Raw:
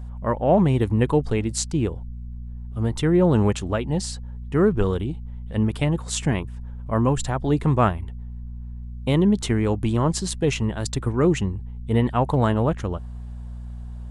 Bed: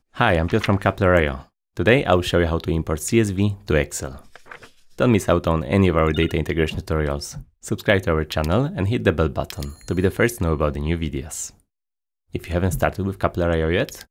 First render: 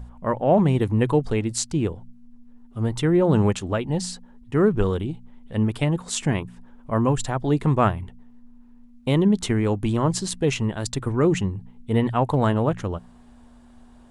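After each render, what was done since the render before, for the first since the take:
hum removal 60 Hz, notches 3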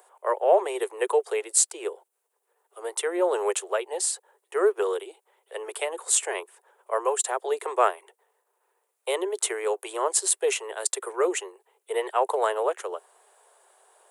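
Butterworth high-pass 380 Hz 96 dB per octave
high shelf with overshoot 6,900 Hz +9.5 dB, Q 1.5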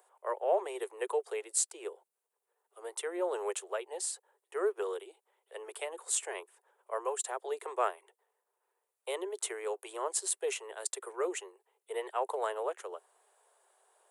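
level −9.5 dB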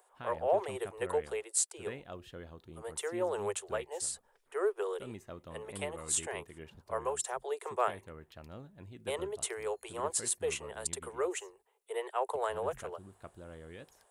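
mix in bed −29 dB

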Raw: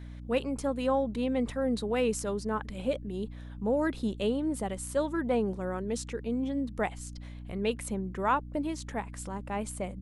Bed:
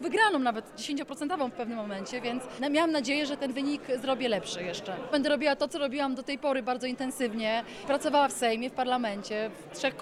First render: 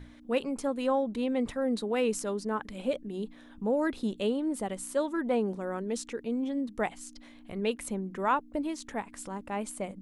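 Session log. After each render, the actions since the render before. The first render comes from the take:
mains-hum notches 60/120/180 Hz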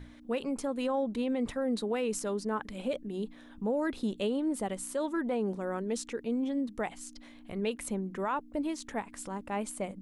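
brickwall limiter −23 dBFS, peak gain reduction 7 dB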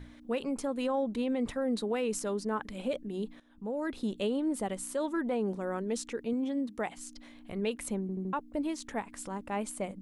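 0:03.40–0:04.38: fade in equal-power, from −16 dB
0:06.33–0:06.97: high-pass filter 110 Hz 6 dB per octave
0:08.01: stutter in place 0.08 s, 4 plays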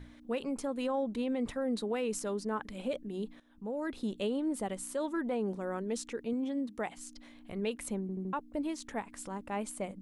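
level −2 dB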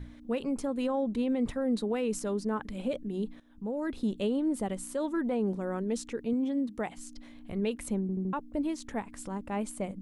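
low-shelf EQ 300 Hz +8 dB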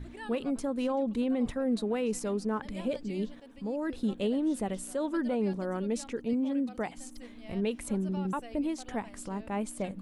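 mix in bed −21 dB

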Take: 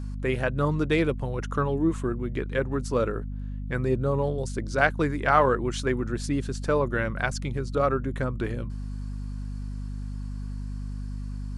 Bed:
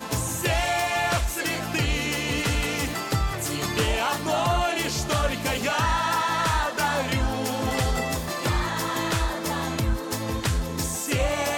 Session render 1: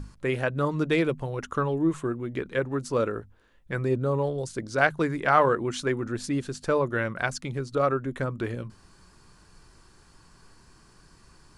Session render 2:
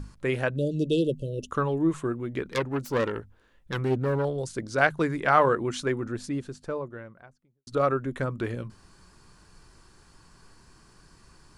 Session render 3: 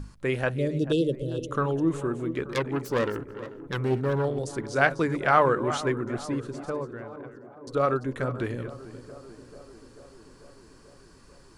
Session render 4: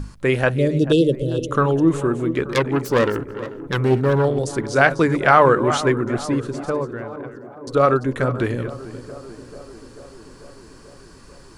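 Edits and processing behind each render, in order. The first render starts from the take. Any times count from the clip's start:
mains-hum notches 50/100/150/200/250 Hz
0:00.56–0:01.51: linear-phase brick-wall band-stop 630–2,600 Hz; 0:02.47–0:04.25: phase distortion by the signal itself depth 0.28 ms; 0:05.60–0:07.67: fade out and dull
delay that plays each chunk backwards 231 ms, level −11.5 dB; tape delay 441 ms, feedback 82%, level −14.5 dB, low-pass 1,200 Hz
level +8.5 dB; brickwall limiter −1 dBFS, peak gain reduction 3 dB

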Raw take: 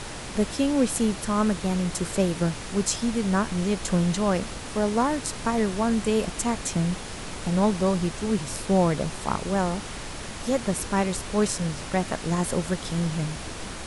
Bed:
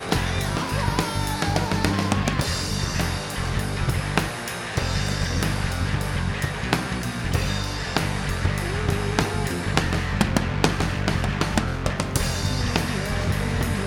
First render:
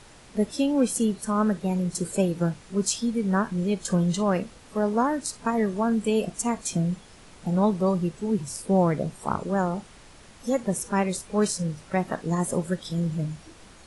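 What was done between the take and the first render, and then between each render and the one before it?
noise reduction from a noise print 14 dB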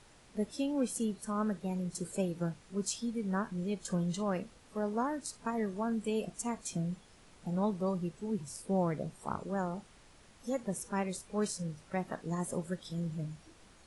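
level −10 dB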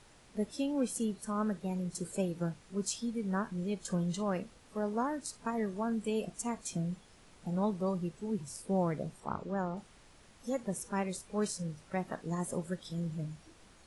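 0:09.20–0:09.77: high-frequency loss of the air 82 metres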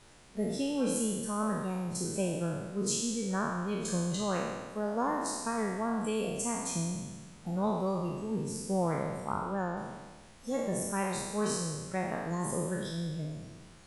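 peak hold with a decay on every bin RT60 1.40 s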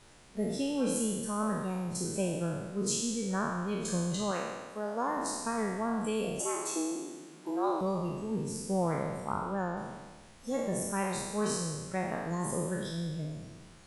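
0:04.31–0:05.17: low-shelf EQ 210 Hz −11 dB
0:06.40–0:07.81: frequency shifter +150 Hz

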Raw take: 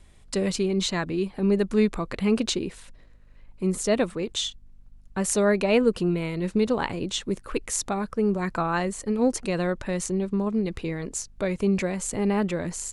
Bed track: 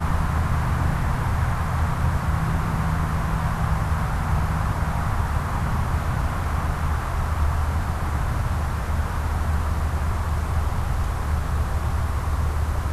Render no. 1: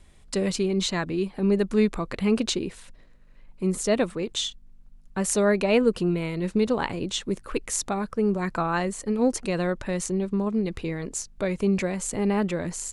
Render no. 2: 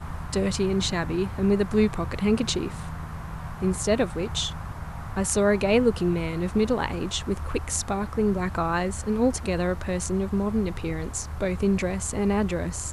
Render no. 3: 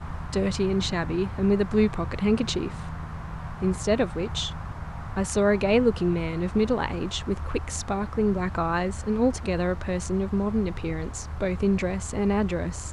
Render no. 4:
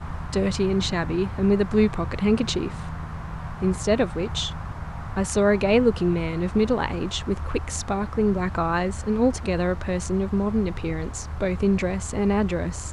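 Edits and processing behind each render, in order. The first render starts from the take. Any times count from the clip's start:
hum removal 50 Hz, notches 2
mix in bed track −12 dB
high-frequency loss of the air 62 metres
level +2 dB

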